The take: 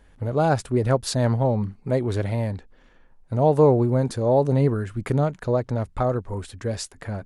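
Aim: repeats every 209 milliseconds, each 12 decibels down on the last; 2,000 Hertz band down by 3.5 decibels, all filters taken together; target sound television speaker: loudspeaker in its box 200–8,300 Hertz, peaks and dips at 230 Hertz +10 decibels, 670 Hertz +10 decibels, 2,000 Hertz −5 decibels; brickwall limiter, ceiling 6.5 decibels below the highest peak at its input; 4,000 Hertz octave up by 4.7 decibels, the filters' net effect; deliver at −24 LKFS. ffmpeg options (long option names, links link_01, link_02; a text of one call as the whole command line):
ffmpeg -i in.wav -af "equalizer=frequency=2000:width_type=o:gain=-4.5,equalizer=frequency=4000:width_type=o:gain=6.5,alimiter=limit=-13dB:level=0:latency=1,highpass=frequency=200:width=0.5412,highpass=frequency=200:width=1.3066,equalizer=frequency=230:width_type=q:width=4:gain=10,equalizer=frequency=670:width_type=q:width=4:gain=10,equalizer=frequency=2000:width_type=q:width=4:gain=-5,lowpass=frequency=8300:width=0.5412,lowpass=frequency=8300:width=1.3066,aecho=1:1:209|418|627:0.251|0.0628|0.0157,volume=-2.5dB" out.wav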